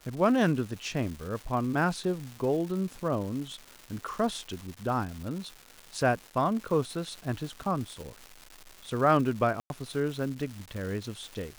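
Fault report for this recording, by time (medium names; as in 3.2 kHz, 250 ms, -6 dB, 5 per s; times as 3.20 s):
crackle 460 per s -37 dBFS
9.60–9.70 s: dropout 101 ms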